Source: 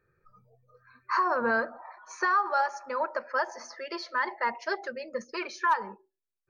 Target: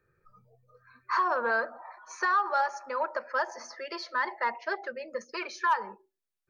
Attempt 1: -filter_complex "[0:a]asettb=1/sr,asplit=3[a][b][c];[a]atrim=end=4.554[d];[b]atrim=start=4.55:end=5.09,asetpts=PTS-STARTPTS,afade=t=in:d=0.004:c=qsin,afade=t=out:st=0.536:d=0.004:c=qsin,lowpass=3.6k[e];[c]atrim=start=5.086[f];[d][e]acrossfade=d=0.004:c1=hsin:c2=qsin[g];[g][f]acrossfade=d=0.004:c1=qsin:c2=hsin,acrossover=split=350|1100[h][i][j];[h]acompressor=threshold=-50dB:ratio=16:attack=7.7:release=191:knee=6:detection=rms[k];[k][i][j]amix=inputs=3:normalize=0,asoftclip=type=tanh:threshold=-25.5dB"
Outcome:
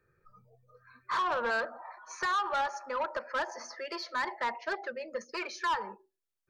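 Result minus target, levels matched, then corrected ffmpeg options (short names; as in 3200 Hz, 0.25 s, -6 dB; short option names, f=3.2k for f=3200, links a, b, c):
soft clip: distortion +16 dB
-filter_complex "[0:a]asettb=1/sr,asplit=3[a][b][c];[a]atrim=end=4.554[d];[b]atrim=start=4.55:end=5.09,asetpts=PTS-STARTPTS,afade=t=in:d=0.004:c=qsin,afade=t=out:st=0.536:d=0.004:c=qsin,lowpass=3.6k[e];[c]atrim=start=5.086[f];[d][e]acrossfade=d=0.004:c1=hsin:c2=qsin[g];[g][f]acrossfade=d=0.004:c1=qsin:c2=hsin,acrossover=split=350|1100[h][i][j];[h]acompressor=threshold=-50dB:ratio=16:attack=7.7:release=191:knee=6:detection=rms[k];[k][i][j]amix=inputs=3:normalize=0,asoftclip=type=tanh:threshold=-14dB"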